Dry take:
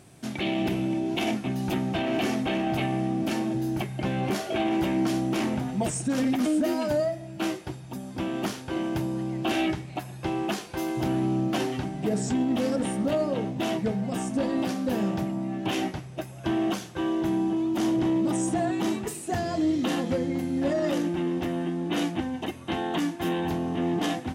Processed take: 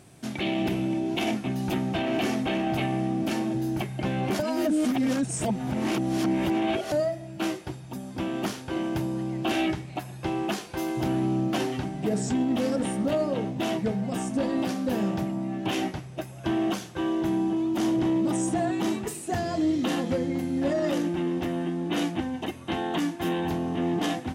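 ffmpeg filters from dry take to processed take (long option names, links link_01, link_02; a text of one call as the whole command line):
ffmpeg -i in.wav -filter_complex "[0:a]asplit=3[link_01][link_02][link_03];[link_01]atrim=end=4.392[link_04];[link_02]atrim=start=4.388:end=6.922,asetpts=PTS-STARTPTS,areverse[link_05];[link_03]atrim=start=6.918[link_06];[link_04][link_05]acrossfade=duration=0.004:curve1=hsin:curve2=hsin[link_07];[link_07][link_06]acrossfade=duration=0.004:curve1=hsin:curve2=hsin" out.wav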